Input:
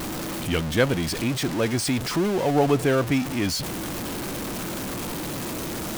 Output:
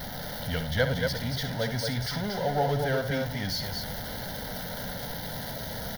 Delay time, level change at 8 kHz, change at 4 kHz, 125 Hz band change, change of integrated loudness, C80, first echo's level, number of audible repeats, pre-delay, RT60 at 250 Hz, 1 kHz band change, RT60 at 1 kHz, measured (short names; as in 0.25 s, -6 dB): 65 ms, -10.0 dB, -2.5 dB, -3.0 dB, -5.5 dB, none, -9.5 dB, 2, none, none, -4.0 dB, none